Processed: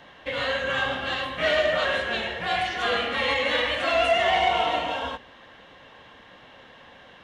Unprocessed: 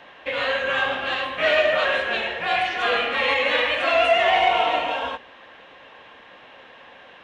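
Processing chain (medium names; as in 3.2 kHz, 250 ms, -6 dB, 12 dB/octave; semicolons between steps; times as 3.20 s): tone controls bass +10 dB, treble +7 dB; band-stop 2.5 kHz, Q 10; trim -3.5 dB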